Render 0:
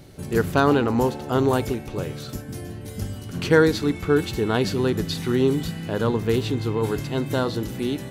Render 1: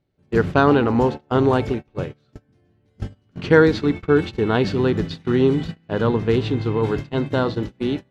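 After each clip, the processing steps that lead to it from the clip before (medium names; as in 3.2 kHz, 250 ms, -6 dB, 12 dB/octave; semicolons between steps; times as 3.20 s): low-pass 3.6 kHz 12 dB/octave; gate -27 dBFS, range -29 dB; trim +3 dB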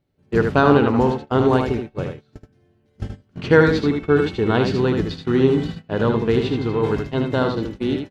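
delay 77 ms -5.5 dB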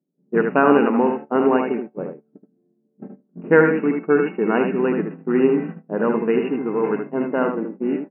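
level-controlled noise filter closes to 310 Hz, open at -10.5 dBFS; brick-wall FIR band-pass 160–2900 Hz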